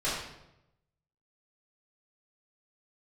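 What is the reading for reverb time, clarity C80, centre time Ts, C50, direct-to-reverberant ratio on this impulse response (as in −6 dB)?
0.85 s, 4.0 dB, 61 ms, 1.0 dB, −11.5 dB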